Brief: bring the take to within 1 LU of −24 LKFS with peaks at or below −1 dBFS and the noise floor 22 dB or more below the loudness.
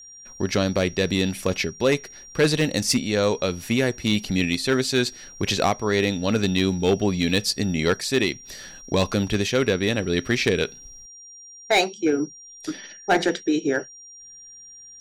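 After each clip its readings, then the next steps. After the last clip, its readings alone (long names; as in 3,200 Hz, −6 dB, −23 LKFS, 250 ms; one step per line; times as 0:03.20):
share of clipped samples 0.5%; peaks flattened at −12.0 dBFS; interfering tone 5,700 Hz; level of the tone −42 dBFS; integrated loudness −23.0 LKFS; sample peak −12.0 dBFS; target loudness −24.0 LKFS
→ clipped peaks rebuilt −12 dBFS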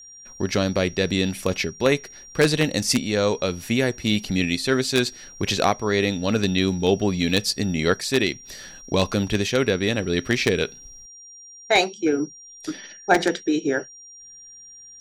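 share of clipped samples 0.0%; interfering tone 5,700 Hz; level of the tone −42 dBFS
→ notch filter 5,700 Hz, Q 30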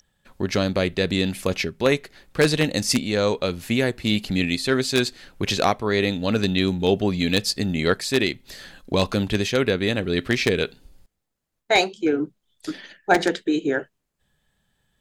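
interfering tone none found; integrated loudness −22.5 LKFS; sample peak −3.0 dBFS; target loudness −24.0 LKFS
→ level −1.5 dB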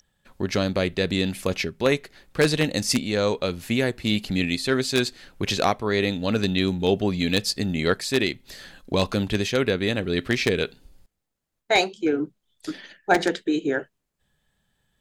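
integrated loudness −24.0 LKFS; sample peak −4.5 dBFS; background noise floor −79 dBFS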